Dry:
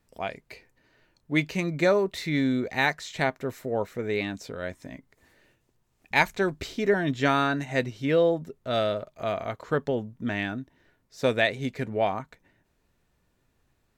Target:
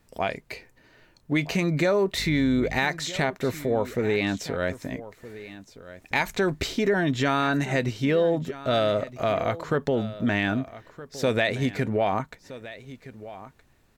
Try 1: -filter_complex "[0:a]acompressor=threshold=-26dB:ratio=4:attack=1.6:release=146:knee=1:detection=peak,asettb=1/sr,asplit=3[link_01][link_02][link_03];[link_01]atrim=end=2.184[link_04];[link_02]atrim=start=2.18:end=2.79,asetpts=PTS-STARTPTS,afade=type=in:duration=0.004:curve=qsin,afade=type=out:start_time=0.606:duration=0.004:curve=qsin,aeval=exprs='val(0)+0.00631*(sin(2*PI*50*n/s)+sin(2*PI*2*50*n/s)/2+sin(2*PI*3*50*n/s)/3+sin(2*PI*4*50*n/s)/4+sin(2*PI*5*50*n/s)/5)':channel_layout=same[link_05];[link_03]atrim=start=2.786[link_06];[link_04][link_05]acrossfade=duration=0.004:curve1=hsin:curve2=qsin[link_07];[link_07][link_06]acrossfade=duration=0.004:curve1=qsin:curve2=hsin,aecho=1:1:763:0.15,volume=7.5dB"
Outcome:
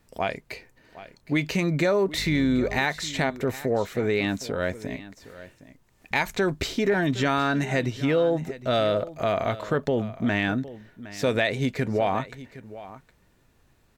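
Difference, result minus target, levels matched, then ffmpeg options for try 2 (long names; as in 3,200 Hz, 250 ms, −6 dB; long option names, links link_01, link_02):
echo 505 ms early
-filter_complex "[0:a]acompressor=threshold=-26dB:ratio=4:attack=1.6:release=146:knee=1:detection=peak,asettb=1/sr,asplit=3[link_01][link_02][link_03];[link_01]atrim=end=2.184[link_04];[link_02]atrim=start=2.18:end=2.79,asetpts=PTS-STARTPTS,afade=type=in:duration=0.004:curve=qsin,afade=type=out:start_time=0.606:duration=0.004:curve=qsin,aeval=exprs='val(0)+0.00631*(sin(2*PI*50*n/s)+sin(2*PI*2*50*n/s)/2+sin(2*PI*3*50*n/s)/3+sin(2*PI*4*50*n/s)/4+sin(2*PI*5*50*n/s)/5)':channel_layout=same[link_05];[link_03]atrim=start=2.786[link_06];[link_04][link_05]acrossfade=duration=0.004:curve1=hsin:curve2=qsin[link_07];[link_07][link_06]acrossfade=duration=0.004:curve1=qsin:curve2=hsin,aecho=1:1:1268:0.15,volume=7.5dB"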